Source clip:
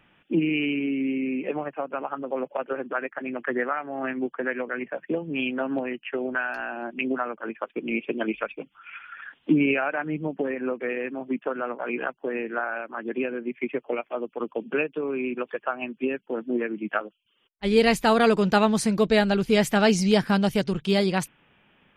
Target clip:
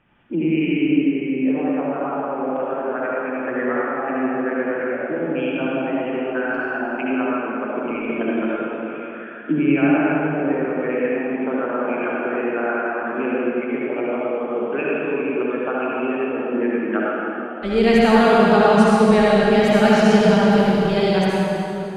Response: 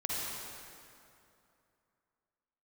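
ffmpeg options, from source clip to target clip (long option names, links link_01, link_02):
-filter_complex "[0:a]asetnsamples=nb_out_samples=441:pad=0,asendcmd='10.71 lowpass f 2800',lowpass=frequency=1700:poles=1[link_01];[1:a]atrim=start_sample=2205,asetrate=35280,aresample=44100[link_02];[link_01][link_02]afir=irnorm=-1:irlink=0"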